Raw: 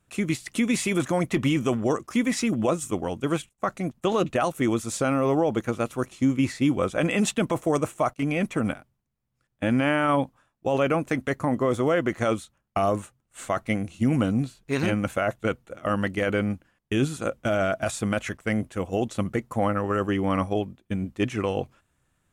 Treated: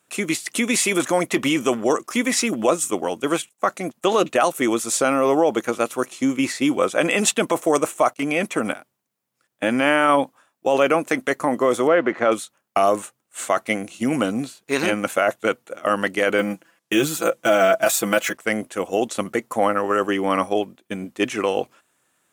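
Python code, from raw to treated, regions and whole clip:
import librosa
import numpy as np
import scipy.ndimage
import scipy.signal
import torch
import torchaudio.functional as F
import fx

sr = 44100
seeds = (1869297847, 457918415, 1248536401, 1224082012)

y = fx.chain(x, sr, fx.law_mismatch(coded='mu'),
    fx.bandpass_edges(low_hz=100.0, high_hz=2300.0), at=(11.87, 12.32))
y = fx.chain(y, sr, fx.high_shelf(hz=8700.0, db=6.0),
    fx.comb(ms=6.0, depth=0.73),
    fx.resample_linear(factor=2), at=(16.38, 18.33))
y = scipy.signal.sosfilt(scipy.signal.butter(2, 320.0, 'highpass', fs=sr, output='sos'), y)
y = fx.high_shelf(y, sr, hz=6000.0, db=6.0)
y = y * 10.0 ** (6.5 / 20.0)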